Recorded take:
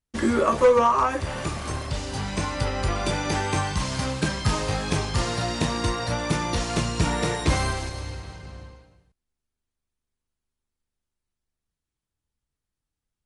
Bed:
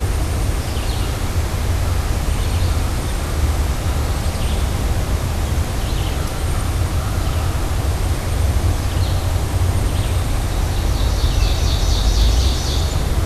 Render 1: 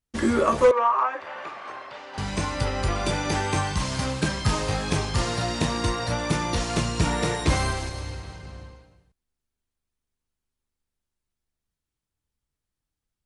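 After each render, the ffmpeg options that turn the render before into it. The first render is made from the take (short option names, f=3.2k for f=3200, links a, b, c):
-filter_complex "[0:a]asettb=1/sr,asplit=3[a][b][c];[a]atrim=end=0.714[d];[b]atrim=start=0.71:end=2.18,asetpts=PTS-STARTPTS,afade=t=in:d=0.004:c=qsin,afade=t=out:st=1.466:d=0.004:c=qsin,highpass=700,lowpass=2.1k[e];[c]atrim=start=2.176[f];[d][e]acrossfade=d=0.004:c1=hsin:c2=qsin[g];[g][f]acrossfade=d=0.004:c1=qsin:c2=hsin"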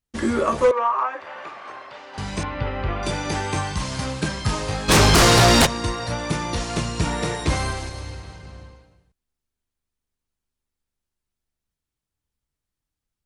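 -filter_complex "[0:a]asettb=1/sr,asplit=3[a][b][c];[a]atrim=end=2.434[d];[b]atrim=start=2.43:end=3.03,asetpts=PTS-STARTPTS,afade=t=in:d=0.004:c=qsin,afade=t=out:st=0.596:d=0.004:c=qsin,lowpass=f=3.1k:w=0.5412,lowpass=f=3.1k:w=1.3066[e];[c]atrim=start=3.026[f];[d][e]acrossfade=d=0.004:c1=hsin:c2=qsin[g];[g][f]acrossfade=d=0.004:c1=qsin:c2=hsin,asplit=3[h][i][j];[h]afade=t=out:st=4.88:d=0.02[k];[i]aeval=exprs='0.316*sin(PI/2*5.01*val(0)/0.316)':c=same,afade=t=in:st=4.88:d=0.02,afade=t=out:st=5.65:d=0.02[l];[j]afade=t=in:st=5.65:d=0.02[m];[k][l][m]amix=inputs=3:normalize=0"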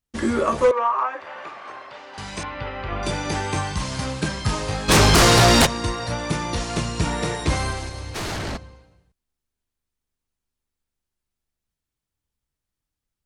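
-filter_complex "[0:a]asettb=1/sr,asplit=3[a][b][c];[a]atrim=end=2.144[d];[b]atrim=start=2.14:end=2.92,asetpts=PTS-STARTPTS,afade=t=in:d=0.004:c=qsin,afade=t=out:st=0.776:d=0.004:c=qsin,lowshelf=f=450:g=-8[e];[c]atrim=start=2.916[f];[d][e]acrossfade=d=0.004:c1=hsin:c2=qsin[g];[g][f]acrossfade=d=0.004:c1=qsin:c2=hsin,asplit=3[h][i][j];[h]afade=t=out:st=8.14:d=0.02[k];[i]aeval=exprs='0.0562*sin(PI/2*6.31*val(0)/0.0562)':c=same,afade=t=in:st=8.14:d=0.02,afade=t=out:st=8.56:d=0.02[l];[j]afade=t=in:st=8.56:d=0.02[m];[k][l][m]amix=inputs=3:normalize=0"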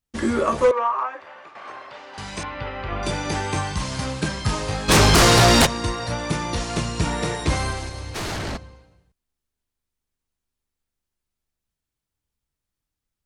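-filter_complex "[0:a]asplit=2[a][b];[a]atrim=end=1.55,asetpts=PTS-STARTPTS,afade=t=out:st=0.74:d=0.81:silence=0.316228[c];[b]atrim=start=1.55,asetpts=PTS-STARTPTS,afade=t=in:d=0.004:c=hsin:silence=0.316228[d];[c][d]concat=n=2:v=0:a=1"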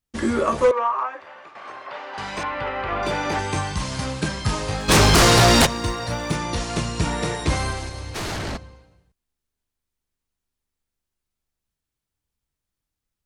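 -filter_complex "[0:a]asettb=1/sr,asplit=3[a][b][c];[a]atrim=end=1.864[d];[b]atrim=start=1.86:end=3.39,asetpts=PTS-STARTPTS,afade=t=in:d=0.004:c=qsin,afade=t=out:st=1.526:d=0.004:c=qsin,asplit=2[e][f];[f]highpass=f=720:p=1,volume=15dB,asoftclip=type=tanh:threshold=-12.5dB[g];[e][g]amix=inputs=2:normalize=0,lowpass=f=1.5k:p=1,volume=-6dB[h];[c]atrim=start=3.386[i];[d][h]acrossfade=d=0.004:c1=hsin:c2=qsin[j];[j][i]acrossfade=d=0.004:c1=qsin:c2=hsin,asettb=1/sr,asplit=3[k][l][m];[k]atrim=end=4.804[n];[l]atrim=start=4.8:end=6.36,asetpts=PTS-STARTPTS,afade=t=in:d=0.004:c=qsin,afade=t=out:st=1.556:d=0.004:c=qsin,acrusher=bits=8:mode=log:mix=0:aa=0.000001[o];[m]atrim=start=6.356[p];[n][o]acrossfade=d=0.004:c1=hsin:c2=qsin[q];[q][p]acrossfade=d=0.004:c1=qsin:c2=hsin"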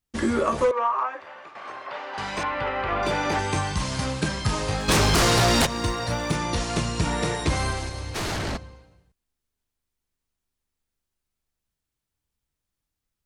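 -af "acompressor=threshold=-19dB:ratio=3"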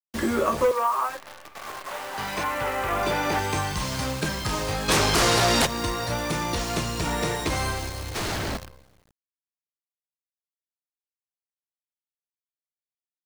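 -filter_complex "[0:a]acrossover=split=290[a][b];[a]asoftclip=type=tanh:threshold=-26dB[c];[c][b]amix=inputs=2:normalize=0,acrusher=bits=7:dc=4:mix=0:aa=0.000001"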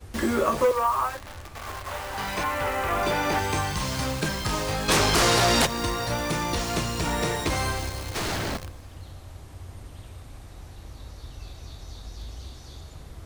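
-filter_complex "[1:a]volume=-24dB[a];[0:a][a]amix=inputs=2:normalize=0"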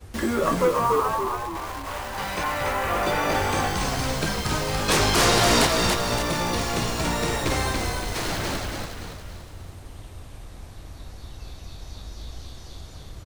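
-filter_complex "[0:a]asplit=7[a][b][c][d][e][f][g];[b]adelay=284,afreqshift=-55,volume=-3.5dB[h];[c]adelay=568,afreqshift=-110,volume=-9.9dB[i];[d]adelay=852,afreqshift=-165,volume=-16.3dB[j];[e]adelay=1136,afreqshift=-220,volume=-22.6dB[k];[f]adelay=1420,afreqshift=-275,volume=-29dB[l];[g]adelay=1704,afreqshift=-330,volume=-35.4dB[m];[a][h][i][j][k][l][m]amix=inputs=7:normalize=0"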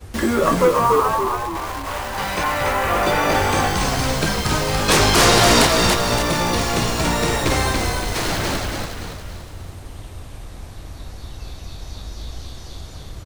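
-af "volume=5.5dB,alimiter=limit=-1dB:level=0:latency=1"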